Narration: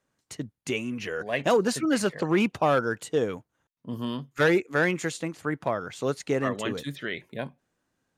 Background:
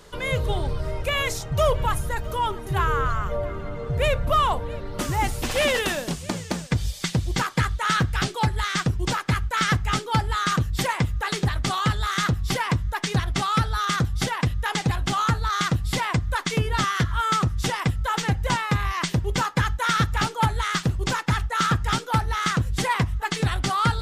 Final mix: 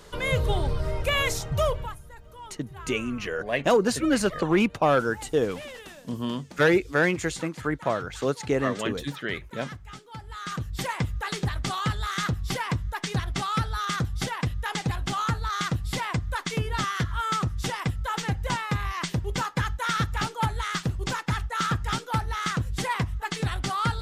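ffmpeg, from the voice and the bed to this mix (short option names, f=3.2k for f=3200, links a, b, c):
-filter_complex "[0:a]adelay=2200,volume=1.5dB[a];[1:a]volume=14.5dB,afade=t=out:st=1.41:d=0.56:silence=0.112202,afade=t=in:st=10.2:d=0.8:silence=0.188365[b];[a][b]amix=inputs=2:normalize=0"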